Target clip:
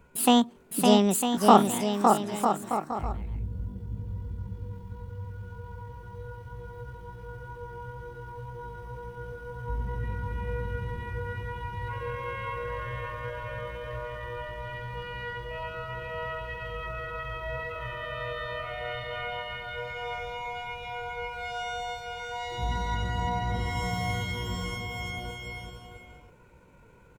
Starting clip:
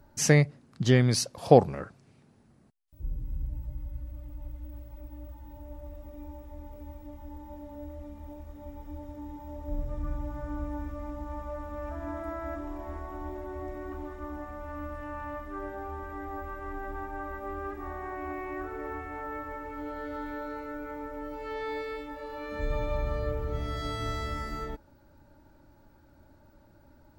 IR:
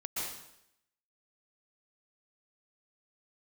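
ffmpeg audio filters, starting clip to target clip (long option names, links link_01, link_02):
-af "asetrate=72056,aresample=44100,atempo=0.612027,aecho=1:1:560|952|1226|1418|1553:0.631|0.398|0.251|0.158|0.1"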